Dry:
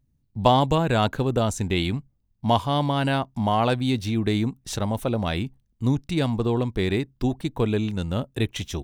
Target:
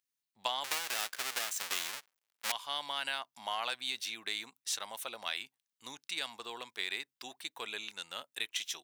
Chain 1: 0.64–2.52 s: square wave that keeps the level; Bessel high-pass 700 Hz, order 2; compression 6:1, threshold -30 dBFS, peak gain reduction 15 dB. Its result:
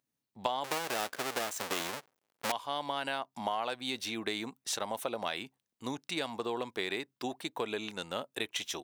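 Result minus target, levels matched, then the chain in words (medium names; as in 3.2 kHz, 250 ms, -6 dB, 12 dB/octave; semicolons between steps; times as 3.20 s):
500 Hz band +10.0 dB
0.64–2.52 s: square wave that keeps the level; Bessel high-pass 2.1 kHz, order 2; compression 6:1, threshold -30 dBFS, peak gain reduction 11.5 dB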